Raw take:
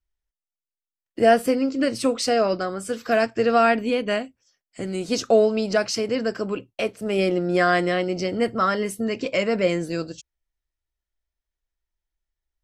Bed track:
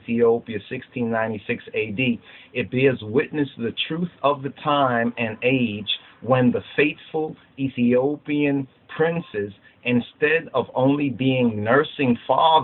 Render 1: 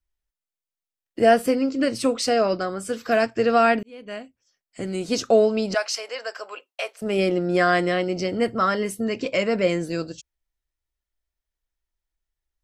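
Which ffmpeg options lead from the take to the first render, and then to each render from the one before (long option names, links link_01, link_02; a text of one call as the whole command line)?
ffmpeg -i in.wav -filter_complex "[0:a]asettb=1/sr,asplit=3[link_01][link_02][link_03];[link_01]atrim=end=5.744[link_04];[link_02]atrim=start=5.74:end=7.02,asetpts=PTS-STARTPTS,afade=type=in:duration=0.004:curve=qsin,afade=type=out:start_time=1.276:duration=0.004:curve=qsin,highpass=frequency=620:width=0.5412,highpass=frequency=620:width=1.3066[link_05];[link_03]atrim=start=7.016[link_06];[link_04][link_05]acrossfade=duration=0.004:curve1=hsin:curve2=qsin[link_07];[link_07][link_06]acrossfade=duration=0.004:curve1=qsin:curve2=hsin,asplit=2[link_08][link_09];[link_08]atrim=end=3.83,asetpts=PTS-STARTPTS,afade=type=out:start_time=3.826:duration=0.004:curve=hsin[link_10];[link_09]atrim=start=3.83,asetpts=PTS-STARTPTS,afade=type=in:duration=1[link_11];[link_10][link_11]concat=n=2:v=0:a=1" out.wav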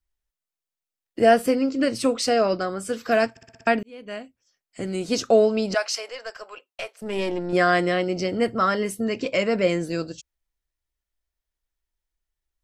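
ffmpeg -i in.wav -filter_complex "[0:a]asettb=1/sr,asplit=3[link_01][link_02][link_03];[link_01]atrim=end=6.104[link_04];[link_02]atrim=start=6.1:end=7.53,asetpts=PTS-STARTPTS,afade=type=in:duration=0.004:curve=qsin,afade=type=out:start_time=1.426:duration=0.004:curve=qsin,aeval=exprs='(tanh(5.01*val(0)+0.7)-tanh(0.7))/5.01':channel_layout=same[link_05];[link_03]atrim=start=7.526[link_06];[link_04][link_05]acrossfade=duration=0.004:curve1=hsin:curve2=qsin[link_07];[link_07][link_06]acrossfade=duration=0.004:curve1=qsin:curve2=hsin,asplit=7[link_08][link_09][link_10][link_11][link_12][link_13][link_14];[link_08]atrim=end=3.372[link_15];[link_09]atrim=start=3.308:end=3.372[link_16];[link_10]atrim=start=3.308:end=3.372[link_17];[link_11]atrim=start=3.308:end=3.372[link_18];[link_12]atrim=start=3.308:end=3.372[link_19];[link_13]atrim=start=3.308:end=3.372[link_20];[link_14]atrim=start=3.668[link_21];[link_15][link_16]acrossfade=duration=0.004:curve1=hsin:curve2=hsin[link_22];[link_22][link_17]acrossfade=duration=0.004:curve1=hsin:curve2=hsin[link_23];[link_23][link_18]acrossfade=duration=0.004:curve1=hsin:curve2=hsin[link_24];[link_24][link_19]acrossfade=duration=0.004:curve1=hsin:curve2=hsin[link_25];[link_25][link_20]acrossfade=duration=0.004:curve1=hsin:curve2=hsin[link_26];[link_26][link_21]acrossfade=duration=0.004:curve1=hsin:curve2=hsin" out.wav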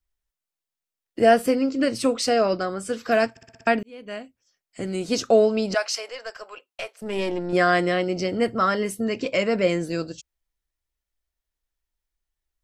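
ffmpeg -i in.wav -filter_complex "[0:a]asettb=1/sr,asplit=3[link_01][link_02][link_03];[link_01]atrim=end=2.464[link_04];[link_02]atrim=start=2.46:end=3.12,asetpts=PTS-STARTPTS,afade=type=in:duration=0.004:curve=qsin,afade=type=out:start_time=0.656:duration=0.004:curve=qsin,lowpass=11000[link_05];[link_03]atrim=start=3.116[link_06];[link_04][link_05]acrossfade=duration=0.004:curve1=hsin:curve2=qsin[link_07];[link_07][link_06]acrossfade=duration=0.004:curve1=qsin:curve2=hsin" out.wav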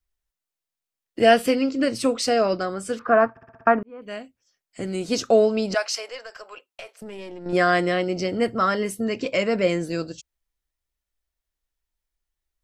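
ffmpeg -i in.wav -filter_complex "[0:a]asettb=1/sr,asplit=3[link_01][link_02][link_03];[link_01]atrim=end=1.204[link_04];[link_02]atrim=start=1.2:end=1.71,asetpts=PTS-STARTPTS,afade=type=in:duration=0.004:curve=qsin,afade=type=out:start_time=0.506:duration=0.004:curve=qsin,equalizer=frequency=3100:width=1.1:gain=8[link_05];[link_03]atrim=start=1.706[link_06];[link_04][link_05]acrossfade=duration=0.004:curve1=hsin:curve2=qsin[link_07];[link_07][link_06]acrossfade=duration=0.004:curve1=qsin:curve2=hsin,asettb=1/sr,asplit=3[link_08][link_09][link_10];[link_08]atrim=end=2.994[link_11];[link_09]atrim=start=2.99:end=4.02,asetpts=PTS-STARTPTS,afade=type=in:duration=0.004:curve=qsin,afade=type=out:start_time=1.026:duration=0.004:curve=qsin,lowpass=frequency=1200:width_type=q:width=3.9[link_12];[link_10]atrim=start=4.016[link_13];[link_11][link_12]acrossfade=duration=0.004:curve1=hsin:curve2=qsin[link_14];[link_14][link_13]acrossfade=duration=0.004:curve1=qsin:curve2=hsin,asettb=1/sr,asplit=3[link_15][link_16][link_17];[link_15]atrim=end=6.244[link_18];[link_16]atrim=start=6.24:end=7.46,asetpts=PTS-STARTPTS,afade=type=in:duration=0.004:curve=qsin,afade=type=out:start_time=1.216:duration=0.004:curve=qsin,acompressor=threshold=-34dB:ratio=6:attack=3.2:release=140:knee=1:detection=peak[link_19];[link_17]atrim=start=7.456[link_20];[link_18][link_19]acrossfade=duration=0.004:curve1=hsin:curve2=qsin[link_21];[link_21][link_20]acrossfade=duration=0.004:curve1=qsin:curve2=hsin" out.wav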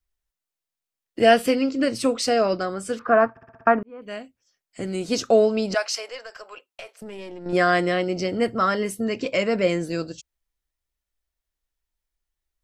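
ffmpeg -i in.wav -af anull out.wav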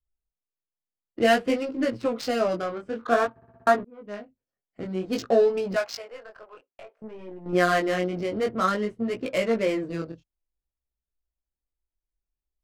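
ffmpeg -i in.wav -af "adynamicsmooth=sensitivity=3:basefreq=840,flanger=delay=16:depth=7.8:speed=0.54" out.wav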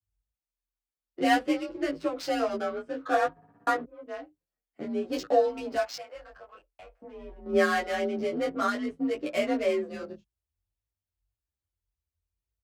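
ffmpeg -i in.wav -filter_complex "[0:a]afreqshift=41,asplit=2[link_01][link_02];[link_02]adelay=9.3,afreqshift=1.8[link_03];[link_01][link_03]amix=inputs=2:normalize=1" out.wav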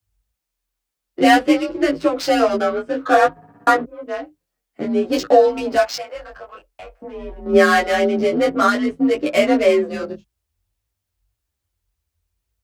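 ffmpeg -i in.wav -af "volume=12dB,alimiter=limit=-2dB:level=0:latency=1" out.wav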